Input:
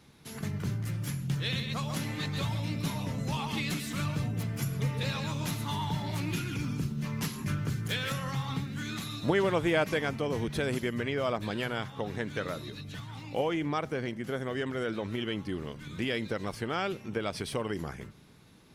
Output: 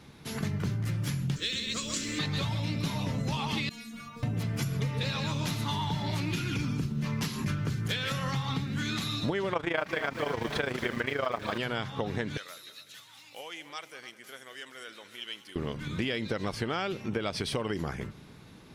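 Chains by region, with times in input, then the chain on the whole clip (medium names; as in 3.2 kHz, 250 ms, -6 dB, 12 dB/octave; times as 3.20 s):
1.36–2.19 s: resonant low-pass 7.6 kHz, resonance Q 5.9 + static phaser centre 330 Hz, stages 4 + companded quantiser 6-bit
3.69–4.23 s: short-mantissa float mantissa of 4-bit + inharmonic resonator 230 Hz, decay 0.42 s, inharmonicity 0.002
9.53–11.58 s: peaking EQ 1.2 kHz +12 dB 2.7 oct + AM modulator 27 Hz, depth 70% + bit-crushed delay 241 ms, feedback 55%, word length 6-bit, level -11.5 dB
12.37–15.56 s: differentiator + multi-head delay 99 ms, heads second and third, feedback 41%, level -16 dB
whole clip: dynamic bell 4.5 kHz, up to +5 dB, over -51 dBFS, Q 0.92; compression, threshold -34 dBFS; treble shelf 6.2 kHz -6.5 dB; trim +6.5 dB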